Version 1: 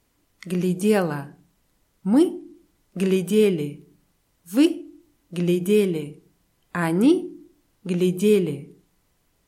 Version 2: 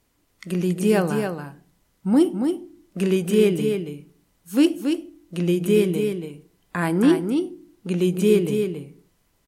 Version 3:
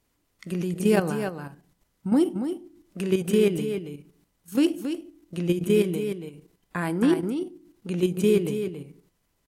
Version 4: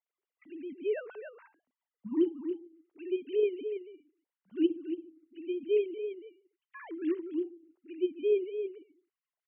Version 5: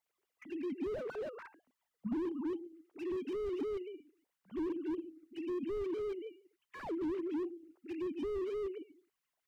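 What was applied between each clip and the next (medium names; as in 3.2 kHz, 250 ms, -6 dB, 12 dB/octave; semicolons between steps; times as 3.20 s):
delay 279 ms -6 dB
level held to a coarse grid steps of 9 dB
formants replaced by sine waves; trim -8.5 dB
harmonic-percussive split percussive +6 dB; slew-rate limiter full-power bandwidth 4.8 Hz; trim +3 dB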